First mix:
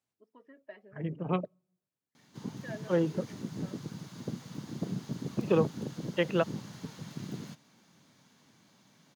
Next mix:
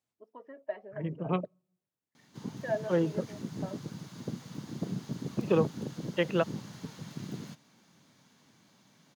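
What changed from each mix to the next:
first voice: add bell 710 Hz +13.5 dB 1.7 oct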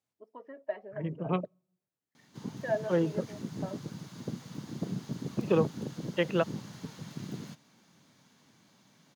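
first voice: send on

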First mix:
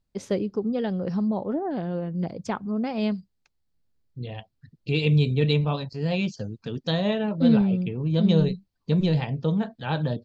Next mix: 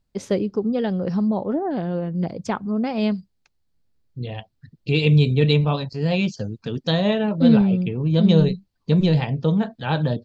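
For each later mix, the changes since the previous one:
first voice +4.0 dB; second voice +4.5 dB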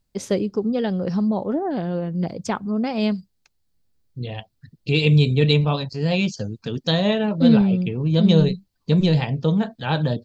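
master: add high shelf 5700 Hz +9.5 dB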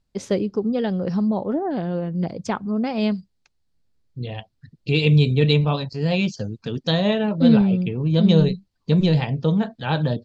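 master: add air absorption 51 m

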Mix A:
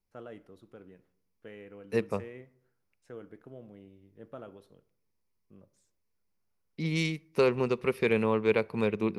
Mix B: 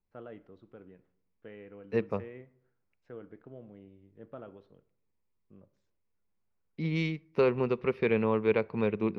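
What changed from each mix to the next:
master: add air absorption 240 m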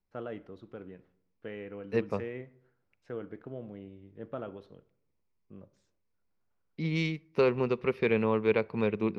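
first voice +6.5 dB; master: add high shelf 5800 Hz +11 dB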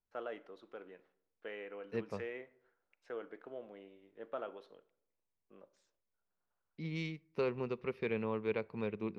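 first voice: add HPF 500 Hz 12 dB/oct; second voice -9.5 dB

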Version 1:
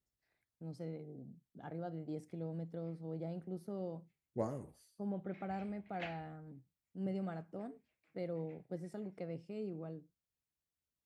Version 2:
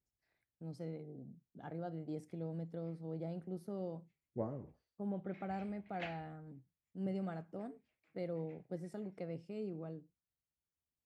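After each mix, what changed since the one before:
second voice: add tape spacing loss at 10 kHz 45 dB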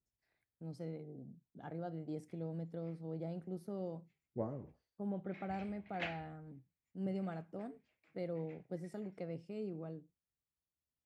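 background +4.5 dB

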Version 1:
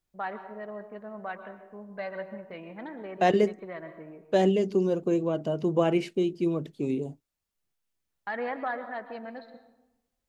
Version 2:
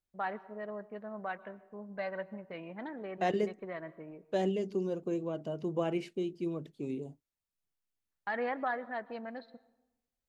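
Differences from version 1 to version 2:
first voice: send -10.5 dB; second voice -8.5 dB

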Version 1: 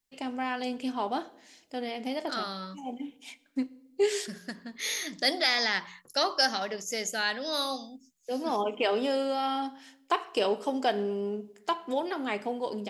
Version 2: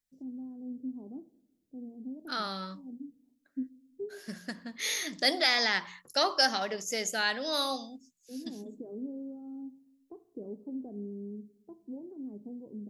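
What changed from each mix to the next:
first voice: add ladder low-pass 340 Hz, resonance 25%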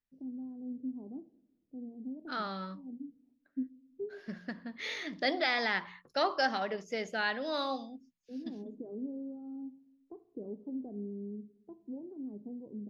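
master: add air absorption 280 m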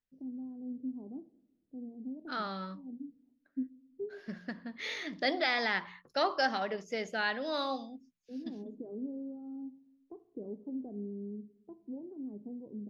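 none

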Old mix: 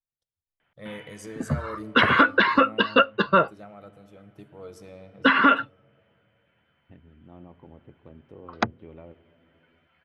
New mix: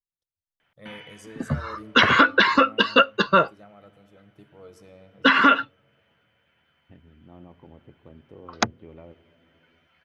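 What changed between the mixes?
first voice -4.5 dB; background: remove air absorption 240 m

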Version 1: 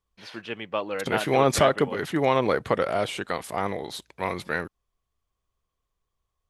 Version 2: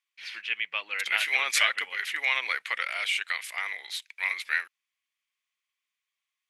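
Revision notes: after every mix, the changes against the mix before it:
first voice: remove HPF 750 Hz 6 dB/oct; master: add resonant high-pass 2200 Hz, resonance Q 3.3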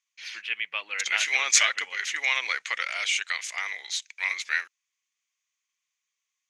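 second voice: add synth low-pass 6500 Hz, resonance Q 5.8

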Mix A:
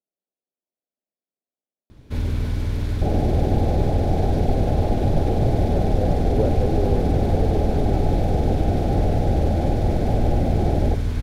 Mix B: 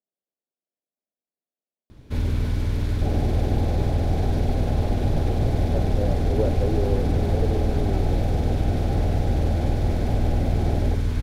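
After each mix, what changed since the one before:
second sound -4.0 dB; reverb: off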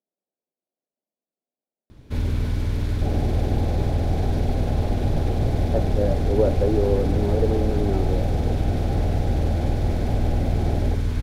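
speech +5.5 dB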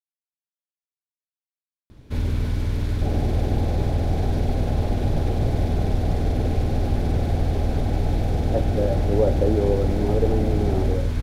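speech: entry +2.80 s

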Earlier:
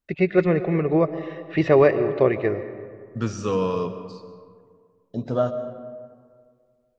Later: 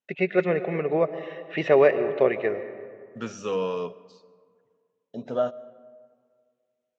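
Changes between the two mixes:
second voice: send -11.5 dB; master: add speaker cabinet 260–7200 Hz, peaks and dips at 320 Hz -8 dB, 1100 Hz -5 dB, 2900 Hz +3 dB, 4700 Hz -9 dB

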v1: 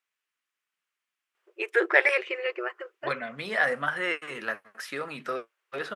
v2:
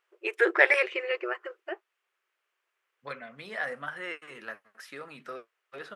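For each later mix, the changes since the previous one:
first voice: entry -1.35 s; second voice -8.5 dB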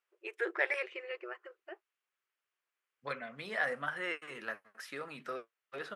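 first voice -11.5 dB

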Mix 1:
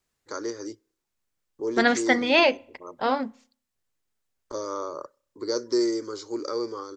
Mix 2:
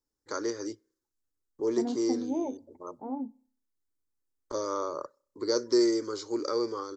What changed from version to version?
second voice: add vocal tract filter u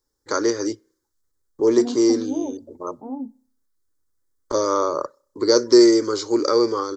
first voice +11.5 dB; second voice: add tilt shelf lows +5.5 dB, about 890 Hz

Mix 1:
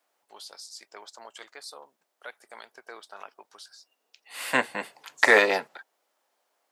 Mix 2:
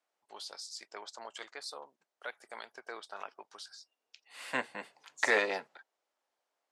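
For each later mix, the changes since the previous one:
second voice -10.0 dB; master: add LPF 8300 Hz 12 dB/oct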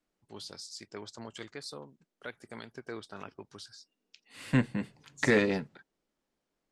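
master: remove resonant high-pass 720 Hz, resonance Q 1.6

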